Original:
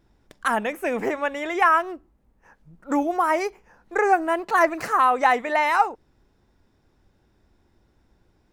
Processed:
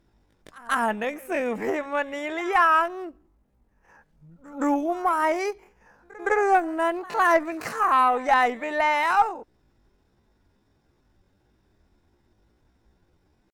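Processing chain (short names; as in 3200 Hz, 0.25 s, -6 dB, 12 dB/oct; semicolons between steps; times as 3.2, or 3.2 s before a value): pre-echo 0.103 s -22 dB; added harmonics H 4 -27 dB, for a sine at -5 dBFS; tempo 0.63×; gain -1.5 dB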